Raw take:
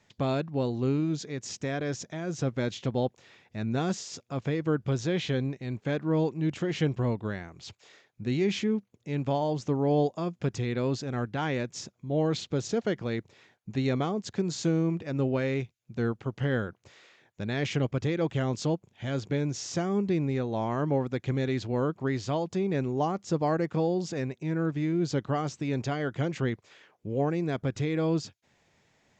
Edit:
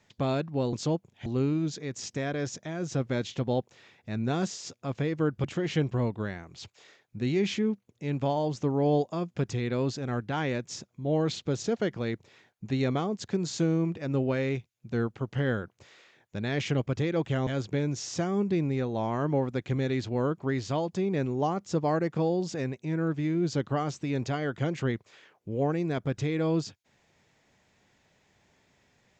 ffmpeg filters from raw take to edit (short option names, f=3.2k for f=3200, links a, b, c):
-filter_complex "[0:a]asplit=5[a][b][c][d][e];[a]atrim=end=0.732[f];[b]atrim=start=18.518:end=19.052[g];[c]atrim=start=0.728:end=4.912[h];[d]atrim=start=6.488:end=18.522[i];[e]atrim=start=19.048[j];[f][g]acrossfade=d=0.004:c1=hsin:c2=hsin[k];[k][h]acrossfade=d=0.004:c1=hsin:c2=hsin[l];[l][i]acrossfade=d=0.004:c1=hsin:c2=hsin[m];[m][j]acrossfade=d=0.004:c1=hsin:c2=hsin"